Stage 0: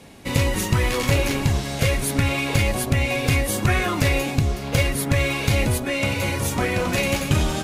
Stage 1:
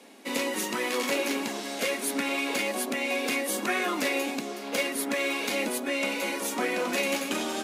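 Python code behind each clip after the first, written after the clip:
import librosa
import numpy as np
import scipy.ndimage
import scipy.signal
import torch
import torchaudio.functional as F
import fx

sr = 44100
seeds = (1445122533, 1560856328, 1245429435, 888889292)

y = scipy.signal.sosfilt(scipy.signal.butter(8, 220.0, 'highpass', fs=sr, output='sos'), x)
y = y * 10.0 ** (-4.5 / 20.0)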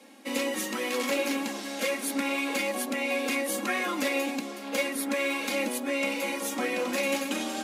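y = x + 0.65 * np.pad(x, (int(3.7 * sr / 1000.0), 0))[:len(x)]
y = y * 10.0 ** (-3.0 / 20.0)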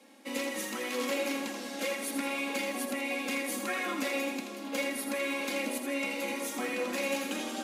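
y = fx.echo_split(x, sr, split_hz=420.0, low_ms=649, high_ms=81, feedback_pct=52, wet_db=-7)
y = y * 10.0 ** (-5.0 / 20.0)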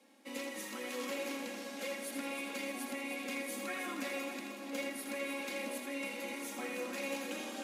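y = fx.echo_split(x, sr, split_hz=640.0, low_ms=476, high_ms=309, feedback_pct=52, wet_db=-8.5)
y = y * 10.0 ** (-7.5 / 20.0)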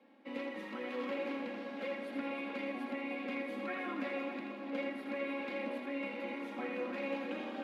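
y = fx.air_absorb(x, sr, metres=400.0)
y = y * 10.0 ** (3.0 / 20.0)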